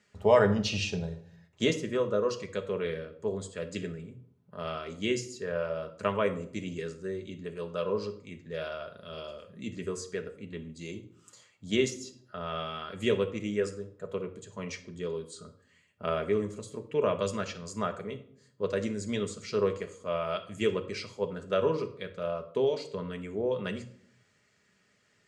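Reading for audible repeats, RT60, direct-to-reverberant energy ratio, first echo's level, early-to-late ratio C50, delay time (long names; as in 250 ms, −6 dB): no echo audible, 0.65 s, 4.5 dB, no echo audible, 13.5 dB, no echo audible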